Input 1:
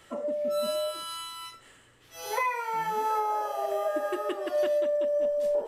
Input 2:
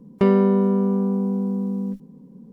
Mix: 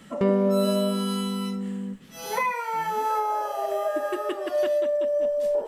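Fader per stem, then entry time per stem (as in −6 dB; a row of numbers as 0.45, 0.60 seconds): +2.5, −6.0 decibels; 0.00, 0.00 seconds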